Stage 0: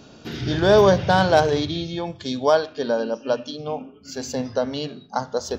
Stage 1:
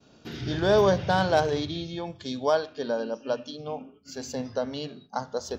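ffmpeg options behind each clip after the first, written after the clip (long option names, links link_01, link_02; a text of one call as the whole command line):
ffmpeg -i in.wav -af "agate=range=-33dB:threshold=-42dB:ratio=3:detection=peak,volume=-6dB" out.wav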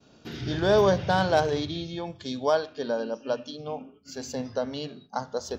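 ffmpeg -i in.wav -af anull out.wav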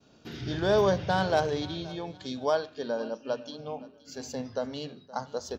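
ffmpeg -i in.wav -af "aecho=1:1:521|1042:0.1|0.03,volume=-3dB" out.wav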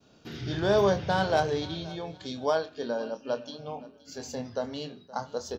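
ffmpeg -i in.wav -filter_complex "[0:a]asplit=2[link_01][link_02];[link_02]adelay=25,volume=-9dB[link_03];[link_01][link_03]amix=inputs=2:normalize=0" out.wav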